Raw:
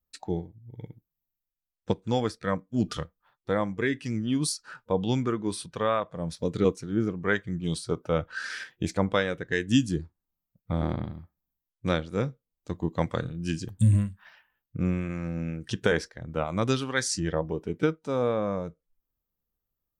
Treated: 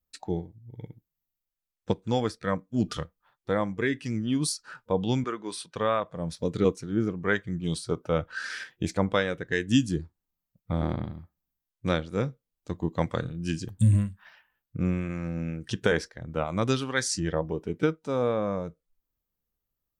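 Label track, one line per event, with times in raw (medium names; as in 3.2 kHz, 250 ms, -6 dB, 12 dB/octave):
5.240000	5.760000	frequency weighting A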